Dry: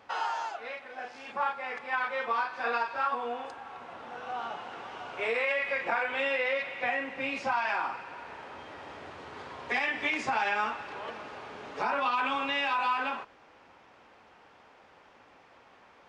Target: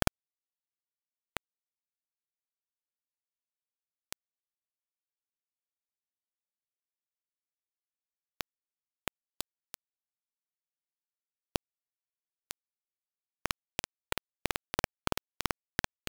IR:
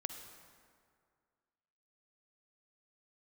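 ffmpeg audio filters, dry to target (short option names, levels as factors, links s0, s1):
-filter_complex "[0:a]aeval=exprs='val(0)+0.00562*(sin(2*PI*60*n/s)+sin(2*PI*2*60*n/s)/2+sin(2*PI*3*60*n/s)/3+sin(2*PI*4*60*n/s)/4+sin(2*PI*5*60*n/s)/5)':c=same,asplit=2[s0][s1];[s1]aecho=0:1:94:0.282[s2];[s0][s2]amix=inputs=2:normalize=0,acompressor=threshold=0.00794:ratio=2.5,asplit=2[s3][s4];[s4]adelay=1106,lowpass=f=4300:p=1,volume=0.112,asplit=2[s5][s6];[s6]adelay=1106,lowpass=f=4300:p=1,volume=0.27[s7];[s5][s7]amix=inputs=2:normalize=0[s8];[s3][s8]amix=inputs=2:normalize=0,acrossover=split=200|3000[s9][s10][s11];[s10]acompressor=threshold=0.00178:ratio=8[s12];[s9][s12][s11]amix=inputs=3:normalize=0,equalizer=f=100:w=0.34:g=7.5,afreqshift=-81,acrusher=bits=3:dc=4:mix=0:aa=0.000001,volume=6.31"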